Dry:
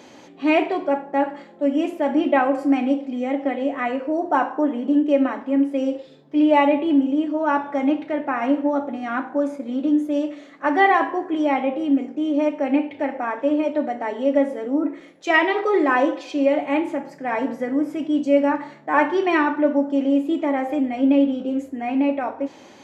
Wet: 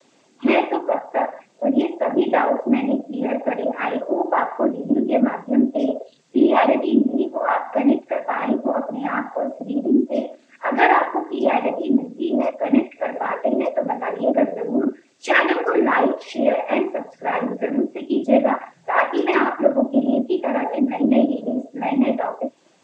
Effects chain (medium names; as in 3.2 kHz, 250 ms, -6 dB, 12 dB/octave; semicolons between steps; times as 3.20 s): added noise white -48 dBFS; in parallel at +1 dB: compression, threshold -32 dBFS, peak gain reduction 19 dB; on the sum: spectral noise reduction 18 dB; noise-vocoded speech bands 16